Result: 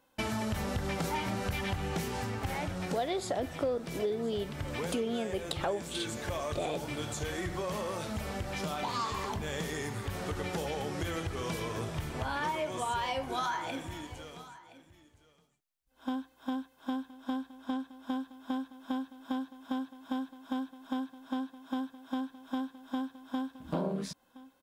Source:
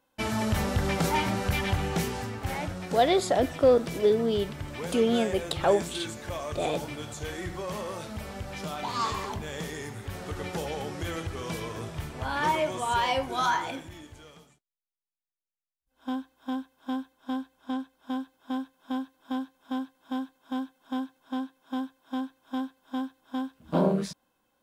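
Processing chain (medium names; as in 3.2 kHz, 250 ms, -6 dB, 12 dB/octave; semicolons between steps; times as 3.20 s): compression 4:1, threshold -35 dBFS, peak gain reduction 16 dB; delay 1019 ms -18 dB; trim +3 dB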